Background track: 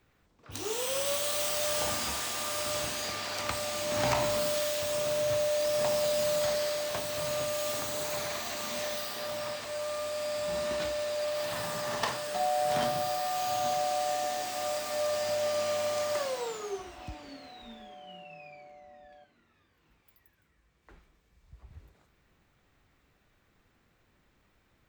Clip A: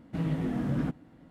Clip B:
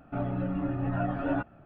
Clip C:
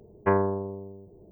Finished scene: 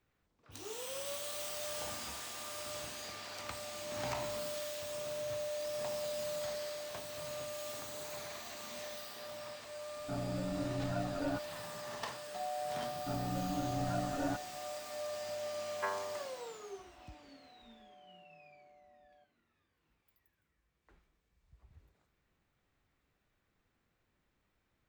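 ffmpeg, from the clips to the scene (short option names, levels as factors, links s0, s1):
-filter_complex "[2:a]asplit=2[s0][s1];[0:a]volume=0.299[s2];[3:a]highpass=1200[s3];[s0]atrim=end=1.65,asetpts=PTS-STARTPTS,volume=0.398,afade=t=in:d=0.004:c=hsin,afade=t=out:st=1.646:d=0.004:c=hsin,adelay=9960[s4];[s1]atrim=end=1.65,asetpts=PTS-STARTPTS,volume=0.422,afade=t=in:d=0.004:c=hsin,afade=t=out:st=1.646:d=0.004:c=hsin,adelay=12940[s5];[s3]atrim=end=1.31,asetpts=PTS-STARTPTS,volume=0.531,afade=t=in:d=0.004:c=hsin,afade=t=out:st=1.306:d=0.004:c=hsin,adelay=686196S[s6];[s2][s4][s5][s6]amix=inputs=4:normalize=0"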